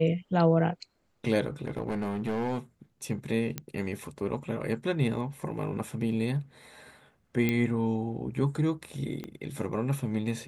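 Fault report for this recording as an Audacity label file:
1.650000	2.580000	clipping −26.5 dBFS
3.580000	3.580000	click −16 dBFS
7.490000	7.490000	click −14 dBFS
9.240000	9.240000	click −24 dBFS

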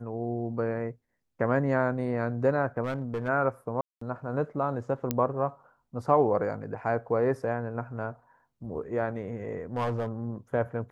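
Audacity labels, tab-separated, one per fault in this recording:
2.840000	3.290000	clipping −27 dBFS
3.810000	4.010000	drop-out 204 ms
5.110000	5.110000	click −12 dBFS
9.760000	10.080000	clipping −24.5 dBFS

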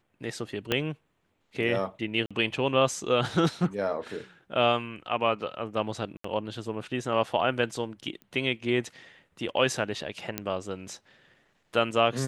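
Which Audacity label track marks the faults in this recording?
0.720000	0.720000	click −11 dBFS
2.260000	2.310000	drop-out 46 ms
6.170000	6.240000	drop-out 74 ms
8.220000	8.220000	click −31 dBFS
10.380000	10.380000	click −12 dBFS

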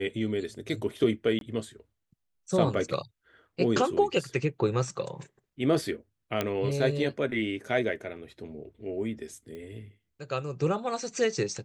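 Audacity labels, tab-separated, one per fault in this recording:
1.390000	1.410000	drop-out 22 ms
6.410000	6.410000	click −13 dBFS
9.550000	9.550000	click −31 dBFS

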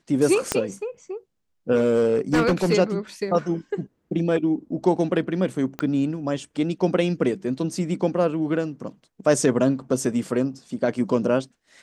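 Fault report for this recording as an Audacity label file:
0.520000	0.520000	click −6 dBFS
1.750000	2.740000	clipping −14.5 dBFS
5.790000	5.790000	click −14 dBFS

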